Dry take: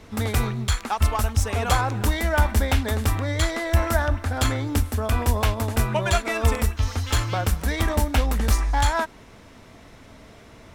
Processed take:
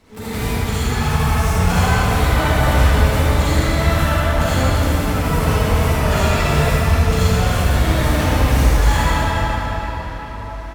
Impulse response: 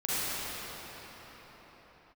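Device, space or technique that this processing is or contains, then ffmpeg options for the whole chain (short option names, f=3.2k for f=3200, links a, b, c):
shimmer-style reverb: -filter_complex "[0:a]asettb=1/sr,asplit=3[a][b][c];[a]atrim=end=6.364[d];[b]atrim=start=6.36:end=8.53,asetpts=PTS-STARTPTS,afade=t=in:d=0.004:c=qsin,afade=t=out:st=2.166:d=0.004:c=qsin,asplit=2[e][f];[f]adelay=43,volume=-11dB[g];[e][g]amix=inputs=2:normalize=0,atrim=end_sample=95697[h];[c]atrim=start=8.526[i];[d][h]acrossfade=d=0.004:c1=hsin:c2=qsin[j];[j][i]acrossfade=d=0.004:c1=qsin:c2=hsin,aecho=1:1:77|154|231|308|385:0.631|0.24|0.0911|0.0346|0.0132,asplit=2[k][l];[l]asetrate=88200,aresample=44100,atempo=0.5,volume=-6dB[m];[k][m]amix=inputs=2:normalize=0[n];[1:a]atrim=start_sample=2205[o];[n][o]afir=irnorm=-1:irlink=0,volume=-7.5dB"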